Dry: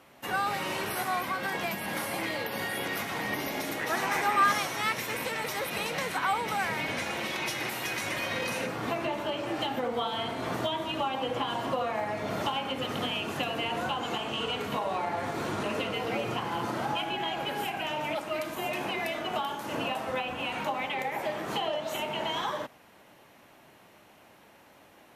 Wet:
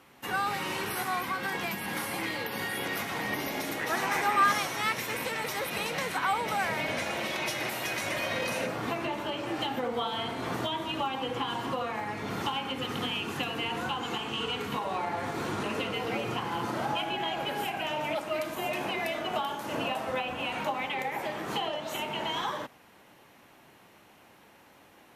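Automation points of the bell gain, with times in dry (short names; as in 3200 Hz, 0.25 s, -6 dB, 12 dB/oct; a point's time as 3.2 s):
bell 620 Hz 0.26 oct
-9.5 dB
from 2.82 s -1.5 dB
from 6.39 s +6 dB
from 8.81 s -5 dB
from 11.06 s -13.5 dB
from 14.84 s -5.5 dB
from 16.73 s +1.5 dB
from 20.71 s -4.5 dB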